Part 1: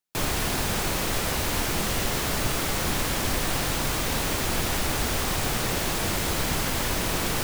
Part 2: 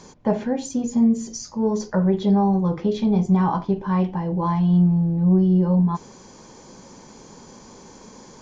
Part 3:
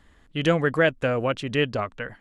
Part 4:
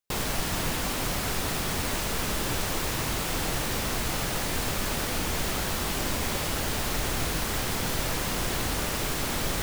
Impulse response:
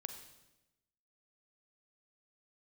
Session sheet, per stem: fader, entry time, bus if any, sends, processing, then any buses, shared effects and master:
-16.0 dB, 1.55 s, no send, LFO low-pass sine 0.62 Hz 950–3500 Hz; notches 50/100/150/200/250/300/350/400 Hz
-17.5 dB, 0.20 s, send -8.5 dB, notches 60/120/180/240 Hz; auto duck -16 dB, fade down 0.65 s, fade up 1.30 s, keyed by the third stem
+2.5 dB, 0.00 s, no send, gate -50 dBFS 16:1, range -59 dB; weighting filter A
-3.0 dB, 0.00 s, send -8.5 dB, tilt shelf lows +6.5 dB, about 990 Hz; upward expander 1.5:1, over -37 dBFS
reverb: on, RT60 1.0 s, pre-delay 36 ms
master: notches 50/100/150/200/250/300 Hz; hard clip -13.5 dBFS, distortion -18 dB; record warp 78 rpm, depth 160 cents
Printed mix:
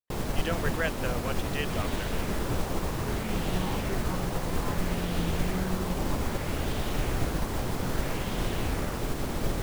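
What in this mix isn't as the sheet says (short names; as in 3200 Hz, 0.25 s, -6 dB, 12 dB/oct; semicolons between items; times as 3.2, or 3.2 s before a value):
stem 3 +2.5 dB -> -9.0 dB; master: missing record warp 78 rpm, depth 160 cents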